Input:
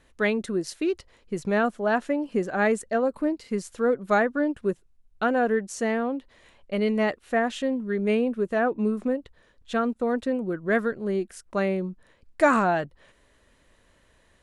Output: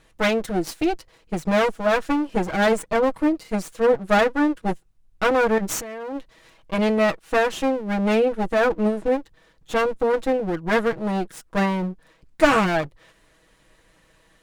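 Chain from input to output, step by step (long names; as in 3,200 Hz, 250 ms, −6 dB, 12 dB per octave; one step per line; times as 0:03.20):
lower of the sound and its delayed copy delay 6.2 ms
0:05.58–0:06.17: compressor whose output falls as the input rises −35 dBFS, ratio −1
level +5 dB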